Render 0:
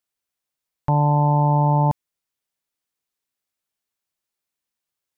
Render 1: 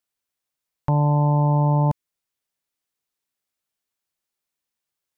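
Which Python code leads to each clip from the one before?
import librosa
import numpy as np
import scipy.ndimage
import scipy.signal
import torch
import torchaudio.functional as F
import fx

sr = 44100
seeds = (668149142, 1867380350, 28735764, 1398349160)

y = fx.dynamic_eq(x, sr, hz=810.0, q=3.3, threshold_db=-36.0, ratio=4.0, max_db=-7)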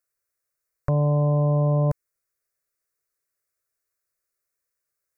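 y = fx.fixed_phaser(x, sr, hz=860.0, stages=6)
y = F.gain(torch.from_numpy(y), 3.5).numpy()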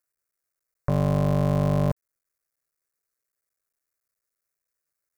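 y = fx.cycle_switch(x, sr, every=3, mode='muted')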